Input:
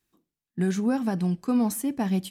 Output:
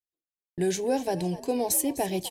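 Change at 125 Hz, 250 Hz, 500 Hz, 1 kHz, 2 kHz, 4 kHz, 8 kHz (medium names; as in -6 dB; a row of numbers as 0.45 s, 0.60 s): -6.5 dB, -6.5 dB, +5.5 dB, +2.5 dB, -1.5 dB, +5.5 dB, +8.5 dB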